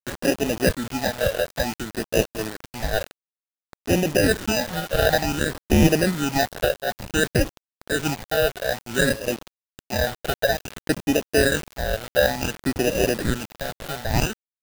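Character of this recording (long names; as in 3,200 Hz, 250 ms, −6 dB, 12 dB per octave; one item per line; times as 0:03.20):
aliases and images of a low sample rate 1,100 Hz, jitter 0%
phaser sweep stages 8, 0.56 Hz, lowest notch 280–1,300 Hz
a quantiser's noise floor 6 bits, dither none
amplitude modulation by smooth noise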